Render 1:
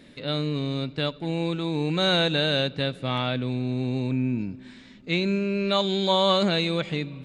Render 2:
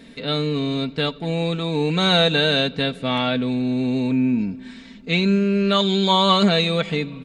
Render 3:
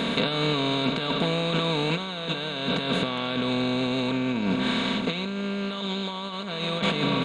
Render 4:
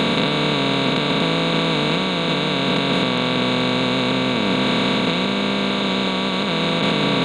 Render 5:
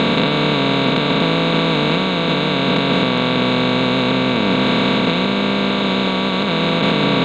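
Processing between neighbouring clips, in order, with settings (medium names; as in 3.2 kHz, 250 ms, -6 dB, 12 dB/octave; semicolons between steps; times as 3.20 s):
comb 4.4 ms, depth 54%; trim +4.5 dB
spectral levelling over time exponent 0.4; compressor with a negative ratio -18 dBFS, ratio -0.5; trim -7.5 dB
spectral levelling over time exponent 0.2
distance through air 90 m; trim +3.5 dB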